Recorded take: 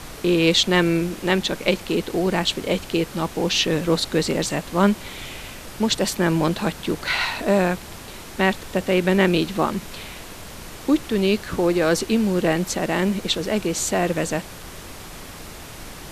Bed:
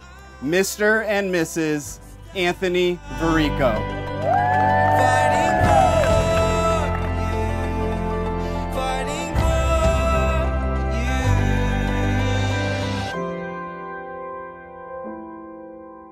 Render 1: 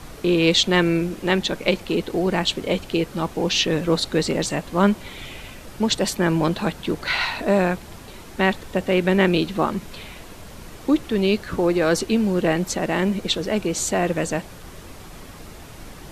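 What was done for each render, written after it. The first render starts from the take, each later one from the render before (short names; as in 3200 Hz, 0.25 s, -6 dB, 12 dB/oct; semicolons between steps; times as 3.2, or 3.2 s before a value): denoiser 6 dB, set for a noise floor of -38 dBFS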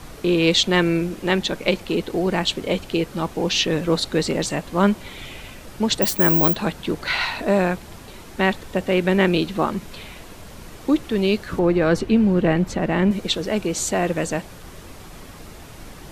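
6.02–6.56 careless resampling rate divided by 2×, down none, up zero stuff; 11.59–13.11 tone controls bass +6 dB, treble -11 dB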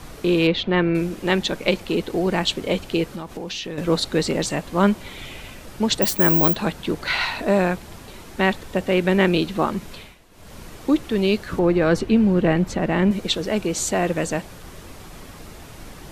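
0.47–0.95 air absorption 350 m; 3.13–3.78 compressor, threshold -27 dBFS; 9.92–10.56 dip -13.5 dB, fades 0.25 s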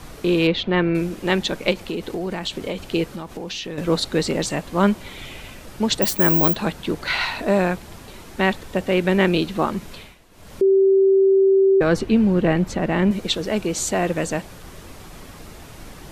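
1.72–2.94 compressor, threshold -22 dBFS; 10.61–11.81 bleep 387 Hz -11.5 dBFS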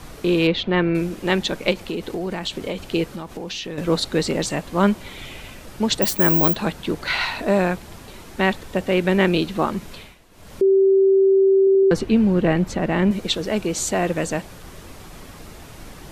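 11.59 stutter in place 0.08 s, 4 plays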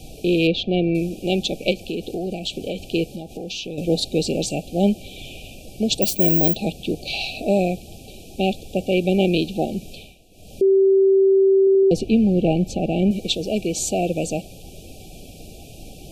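FFT band-reject 810–2300 Hz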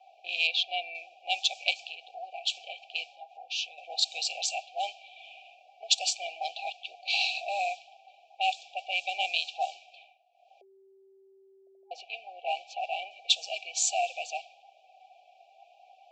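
Chebyshev band-pass 720–7500 Hz, order 5; low-pass opened by the level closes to 910 Hz, open at -24.5 dBFS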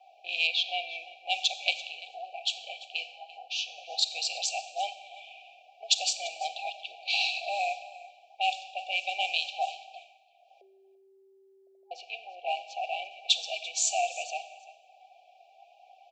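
echo 0.34 s -18.5 dB; Schroeder reverb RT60 1.1 s, combs from 30 ms, DRR 12.5 dB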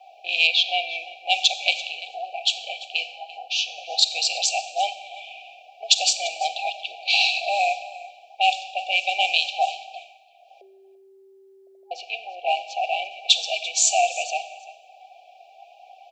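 gain +8.5 dB; limiter -3 dBFS, peak gain reduction 2.5 dB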